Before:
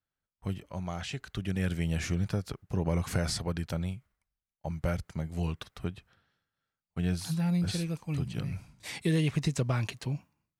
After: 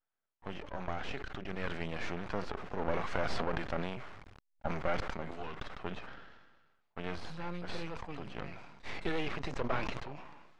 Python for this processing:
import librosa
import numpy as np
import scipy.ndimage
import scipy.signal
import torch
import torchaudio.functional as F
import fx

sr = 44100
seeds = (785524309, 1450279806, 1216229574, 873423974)

y = fx.law_mismatch(x, sr, coded='mu', at=(2.17, 4.95))
y = scipy.signal.sosfilt(scipy.signal.butter(2, 570.0, 'highpass', fs=sr, output='sos'), y)
y = np.maximum(y, 0.0)
y = fx.spacing_loss(y, sr, db_at_10k=35)
y = fx.sustainer(y, sr, db_per_s=41.0)
y = F.gain(torch.from_numpy(y), 10.0).numpy()